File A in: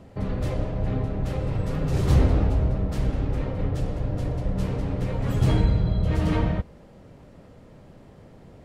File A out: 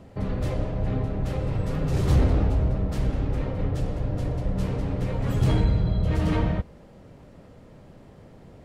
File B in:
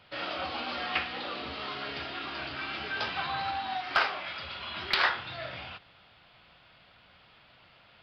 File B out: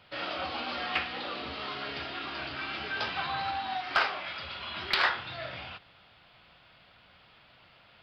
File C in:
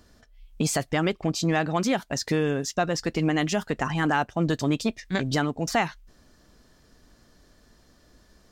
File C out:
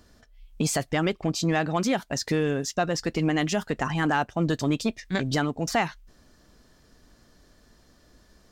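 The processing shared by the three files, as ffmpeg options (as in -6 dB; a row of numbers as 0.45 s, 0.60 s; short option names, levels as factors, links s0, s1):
-af "asoftclip=type=tanh:threshold=0.335"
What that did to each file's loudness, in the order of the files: -0.5 LU, 0.0 LU, -0.5 LU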